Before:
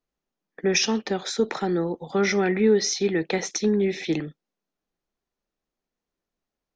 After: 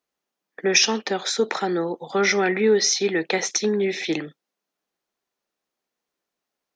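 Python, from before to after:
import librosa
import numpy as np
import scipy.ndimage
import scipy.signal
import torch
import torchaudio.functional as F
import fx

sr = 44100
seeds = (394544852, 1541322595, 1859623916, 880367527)

y = fx.highpass(x, sr, hz=520.0, slope=6)
y = F.gain(torch.from_numpy(y), 5.5).numpy()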